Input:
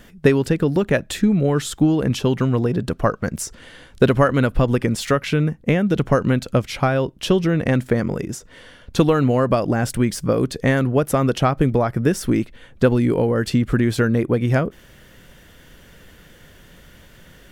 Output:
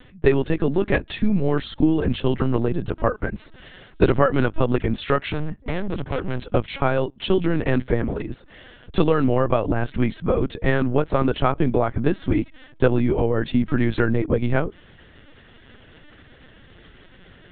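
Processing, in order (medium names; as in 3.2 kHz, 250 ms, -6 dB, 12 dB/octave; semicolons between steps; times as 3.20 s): 5.20–6.54 s: hard clipper -20 dBFS, distortion -16 dB; LPC vocoder at 8 kHz pitch kept; trim -1.5 dB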